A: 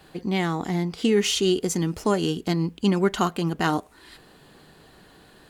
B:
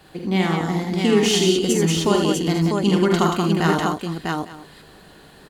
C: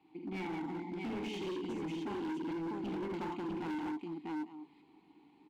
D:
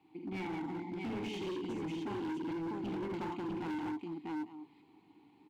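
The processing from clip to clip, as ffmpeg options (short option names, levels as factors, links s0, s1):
-af "aecho=1:1:48|79|183|648|854:0.501|0.562|0.562|0.668|0.119,volume=1.19"
-filter_complex "[0:a]asplit=3[s0][s1][s2];[s0]bandpass=f=300:t=q:w=8,volume=1[s3];[s1]bandpass=f=870:t=q:w=8,volume=0.501[s4];[s2]bandpass=f=2240:t=q:w=8,volume=0.355[s5];[s3][s4][s5]amix=inputs=3:normalize=0,volume=39.8,asoftclip=hard,volume=0.0251,volume=0.631"
-af "equalizer=f=110:w=5.4:g=12.5"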